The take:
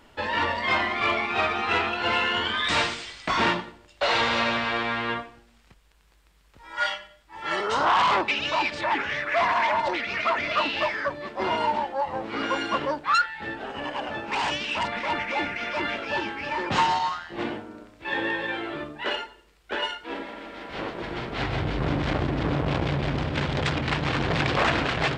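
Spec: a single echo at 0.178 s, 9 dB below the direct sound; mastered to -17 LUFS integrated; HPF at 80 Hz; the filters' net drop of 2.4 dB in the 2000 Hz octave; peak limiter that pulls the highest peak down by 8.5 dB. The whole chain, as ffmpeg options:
-af "highpass=80,equalizer=f=2k:t=o:g=-3,alimiter=limit=-19.5dB:level=0:latency=1,aecho=1:1:178:0.355,volume=12dB"

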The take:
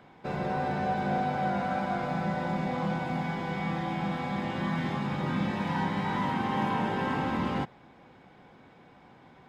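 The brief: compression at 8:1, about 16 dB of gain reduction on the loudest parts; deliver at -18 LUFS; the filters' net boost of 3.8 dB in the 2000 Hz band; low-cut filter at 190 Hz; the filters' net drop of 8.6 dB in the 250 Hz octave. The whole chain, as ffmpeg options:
-af "highpass=190,equalizer=f=250:t=o:g=-9,equalizer=f=2k:t=o:g=5,acompressor=threshold=-44dB:ratio=8,volume=29dB"

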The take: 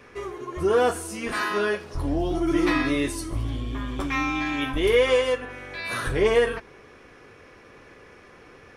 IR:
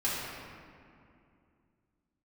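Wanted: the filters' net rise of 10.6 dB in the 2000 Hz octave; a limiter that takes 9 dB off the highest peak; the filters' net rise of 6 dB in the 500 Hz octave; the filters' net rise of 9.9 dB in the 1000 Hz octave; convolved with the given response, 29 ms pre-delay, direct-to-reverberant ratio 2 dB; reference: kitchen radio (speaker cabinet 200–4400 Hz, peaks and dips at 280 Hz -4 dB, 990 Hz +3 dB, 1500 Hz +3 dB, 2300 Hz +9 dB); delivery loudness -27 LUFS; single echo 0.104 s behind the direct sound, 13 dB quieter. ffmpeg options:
-filter_complex "[0:a]equalizer=f=500:t=o:g=5.5,equalizer=f=1k:t=o:g=7,equalizer=f=2k:t=o:g=4,alimiter=limit=-12dB:level=0:latency=1,aecho=1:1:104:0.224,asplit=2[a][b];[1:a]atrim=start_sample=2205,adelay=29[c];[b][c]afir=irnorm=-1:irlink=0,volume=-10.5dB[d];[a][d]amix=inputs=2:normalize=0,highpass=200,equalizer=f=280:t=q:w=4:g=-4,equalizer=f=990:t=q:w=4:g=3,equalizer=f=1.5k:t=q:w=4:g=3,equalizer=f=2.3k:t=q:w=4:g=9,lowpass=f=4.4k:w=0.5412,lowpass=f=4.4k:w=1.3066,volume=-8.5dB"

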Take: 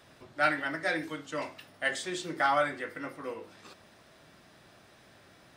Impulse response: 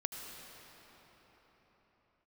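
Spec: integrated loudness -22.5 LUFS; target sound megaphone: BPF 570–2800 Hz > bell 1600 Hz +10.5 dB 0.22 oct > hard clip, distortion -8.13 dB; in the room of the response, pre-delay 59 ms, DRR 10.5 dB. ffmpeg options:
-filter_complex "[0:a]asplit=2[a][b];[1:a]atrim=start_sample=2205,adelay=59[c];[b][c]afir=irnorm=-1:irlink=0,volume=-11.5dB[d];[a][d]amix=inputs=2:normalize=0,highpass=570,lowpass=2.8k,equalizer=f=1.6k:t=o:w=0.22:g=10.5,asoftclip=type=hard:threshold=-25dB,volume=9.5dB"

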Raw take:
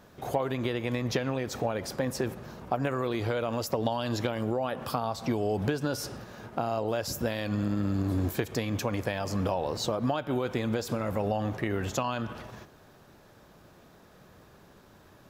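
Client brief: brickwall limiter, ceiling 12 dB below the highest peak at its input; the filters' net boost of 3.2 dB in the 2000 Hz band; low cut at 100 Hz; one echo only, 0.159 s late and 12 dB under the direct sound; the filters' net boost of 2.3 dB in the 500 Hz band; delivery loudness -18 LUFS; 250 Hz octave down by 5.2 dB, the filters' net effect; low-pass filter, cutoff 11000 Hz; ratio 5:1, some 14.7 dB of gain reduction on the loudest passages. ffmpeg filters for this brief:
-af "highpass=100,lowpass=11k,equalizer=f=250:t=o:g=-8,equalizer=f=500:t=o:g=4.5,equalizer=f=2k:t=o:g=4,acompressor=threshold=-40dB:ratio=5,alimiter=level_in=11dB:limit=-24dB:level=0:latency=1,volume=-11dB,aecho=1:1:159:0.251,volume=28dB"

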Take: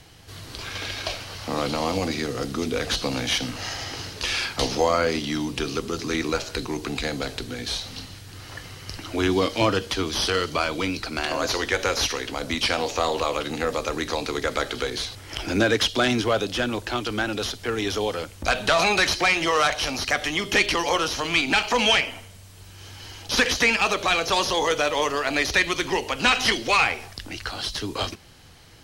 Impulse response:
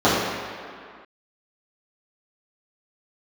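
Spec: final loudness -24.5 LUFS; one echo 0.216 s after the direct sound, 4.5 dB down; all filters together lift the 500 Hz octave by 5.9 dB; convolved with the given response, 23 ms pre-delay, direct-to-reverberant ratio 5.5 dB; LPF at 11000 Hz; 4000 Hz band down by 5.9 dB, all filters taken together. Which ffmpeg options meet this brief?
-filter_complex "[0:a]lowpass=11k,equalizer=f=500:t=o:g=7,equalizer=f=4k:t=o:g=-8,aecho=1:1:216:0.596,asplit=2[a][b];[1:a]atrim=start_sample=2205,adelay=23[c];[b][c]afir=irnorm=-1:irlink=0,volume=-30dB[d];[a][d]amix=inputs=2:normalize=0,volume=-5dB"

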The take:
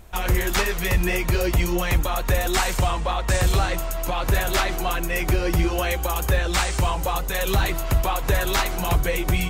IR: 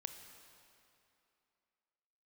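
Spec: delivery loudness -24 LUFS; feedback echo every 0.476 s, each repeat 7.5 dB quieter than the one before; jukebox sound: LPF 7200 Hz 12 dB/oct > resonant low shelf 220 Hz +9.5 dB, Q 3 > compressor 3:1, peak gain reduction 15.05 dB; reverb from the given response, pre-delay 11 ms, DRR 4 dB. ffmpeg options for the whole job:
-filter_complex "[0:a]aecho=1:1:476|952|1428|1904|2380:0.422|0.177|0.0744|0.0312|0.0131,asplit=2[a][b];[1:a]atrim=start_sample=2205,adelay=11[c];[b][c]afir=irnorm=-1:irlink=0,volume=-1dB[d];[a][d]amix=inputs=2:normalize=0,lowpass=7.2k,lowshelf=f=220:t=q:w=3:g=9.5,acompressor=threshold=-23dB:ratio=3,volume=1dB"

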